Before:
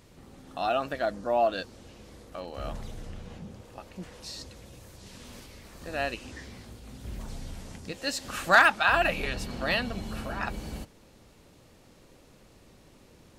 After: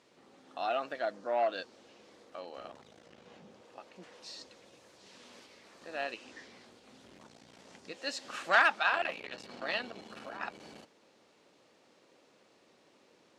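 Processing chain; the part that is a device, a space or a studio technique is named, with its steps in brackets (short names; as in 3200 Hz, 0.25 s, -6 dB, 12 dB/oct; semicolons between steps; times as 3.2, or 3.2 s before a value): public-address speaker with an overloaded transformer (core saturation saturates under 990 Hz; BPF 330–6200 Hz); gain -4.5 dB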